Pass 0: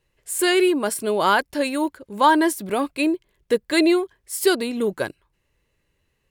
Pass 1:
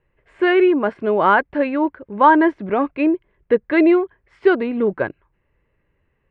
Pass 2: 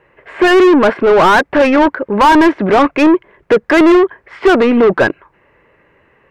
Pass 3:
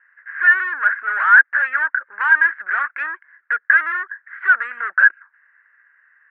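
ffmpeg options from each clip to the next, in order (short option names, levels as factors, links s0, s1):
-af "lowpass=f=2200:w=0.5412,lowpass=f=2200:w=1.3066,volume=1.58"
-filter_complex "[0:a]asplit=2[s0][s1];[s1]highpass=f=720:p=1,volume=31.6,asoftclip=type=tanh:threshold=0.841[s2];[s0][s2]amix=inputs=2:normalize=0,lowpass=f=1500:p=1,volume=0.501,volume=1.12"
-af "asuperpass=centerf=1600:order=4:qfactor=3.9,volume=1.88"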